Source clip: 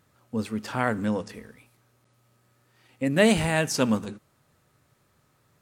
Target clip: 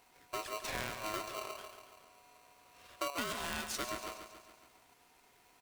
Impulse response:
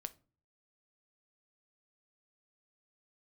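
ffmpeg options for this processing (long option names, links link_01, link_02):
-af "asetnsamples=nb_out_samples=441:pad=0,asendcmd='1.14 equalizer g 3.5;3.1 equalizer g -7',equalizer=frequency=230:width=0.89:gain=-7.5,acompressor=threshold=-38dB:ratio=6,aecho=1:1:140|280|420|560|700|840|980:0.355|0.199|0.111|0.0623|0.0349|0.0195|0.0109,aeval=exprs='val(0)*sgn(sin(2*PI*850*n/s))':channel_layout=same,volume=1dB"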